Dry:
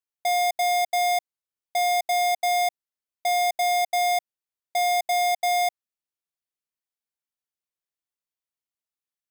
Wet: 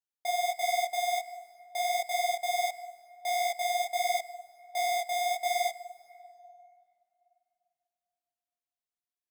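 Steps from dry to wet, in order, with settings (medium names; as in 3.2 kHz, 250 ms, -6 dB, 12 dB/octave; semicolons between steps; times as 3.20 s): reverberation RT60 3.0 s, pre-delay 72 ms, DRR 14.5 dB; detune thickener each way 50 cents; trim -3 dB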